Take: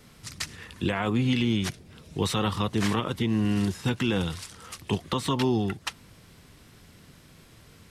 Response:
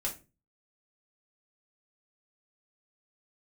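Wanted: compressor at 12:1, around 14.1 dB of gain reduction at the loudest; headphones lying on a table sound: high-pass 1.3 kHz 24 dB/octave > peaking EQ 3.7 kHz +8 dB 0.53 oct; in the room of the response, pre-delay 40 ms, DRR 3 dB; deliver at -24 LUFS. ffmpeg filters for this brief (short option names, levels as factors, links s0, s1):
-filter_complex "[0:a]acompressor=threshold=0.0178:ratio=12,asplit=2[s0][s1];[1:a]atrim=start_sample=2205,adelay=40[s2];[s1][s2]afir=irnorm=-1:irlink=0,volume=0.531[s3];[s0][s3]amix=inputs=2:normalize=0,highpass=f=1300:w=0.5412,highpass=f=1300:w=1.3066,equalizer=f=3700:t=o:w=0.53:g=8,volume=6.68"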